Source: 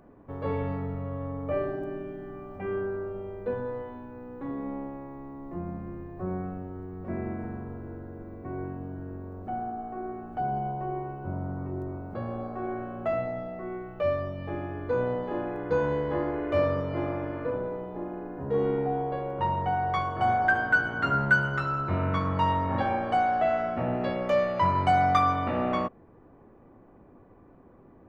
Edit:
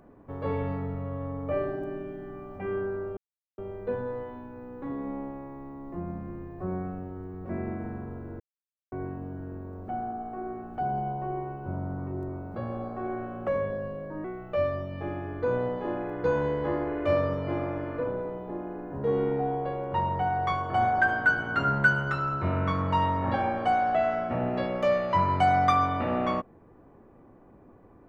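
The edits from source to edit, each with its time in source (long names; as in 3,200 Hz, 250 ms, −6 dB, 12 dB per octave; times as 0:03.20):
0:03.17: splice in silence 0.41 s
0:07.99–0:08.51: silence
0:13.06–0:13.71: play speed 84%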